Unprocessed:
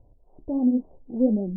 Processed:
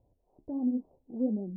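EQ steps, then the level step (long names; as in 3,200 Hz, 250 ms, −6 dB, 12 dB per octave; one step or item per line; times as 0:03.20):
high-pass filter 93 Hz 6 dB per octave
dynamic equaliser 590 Hz, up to −5 dB, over −39 dBFS, Q 2.9
−7.5 dB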